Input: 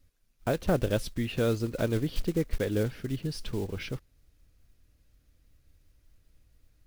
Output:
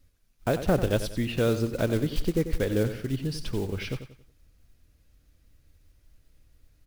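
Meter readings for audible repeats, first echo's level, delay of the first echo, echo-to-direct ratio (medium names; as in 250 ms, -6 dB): 3, -11.0 dB, 92 ms, -10.5 dB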